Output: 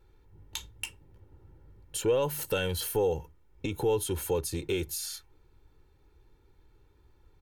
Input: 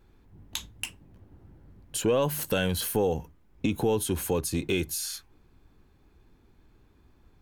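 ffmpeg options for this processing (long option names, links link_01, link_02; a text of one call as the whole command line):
ffmpeg -i in.wav -af "aecho=1:1:2.2:0.63,volume=-4.5dB" out.wav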